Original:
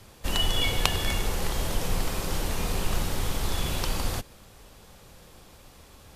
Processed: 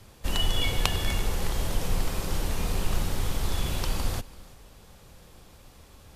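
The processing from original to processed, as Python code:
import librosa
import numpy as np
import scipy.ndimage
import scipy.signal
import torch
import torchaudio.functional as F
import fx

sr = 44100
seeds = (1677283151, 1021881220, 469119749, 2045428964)

y = fx.low_shelf(x, sr, hz=180.0, db=4.0)
y = y + 10.0 ** (-21.0 / 20.0) * np.pad(y, (int(336 * sr / 1000.0), 0))[:len(y)]
y = y * librosa.db_to_amplitude(-2.5)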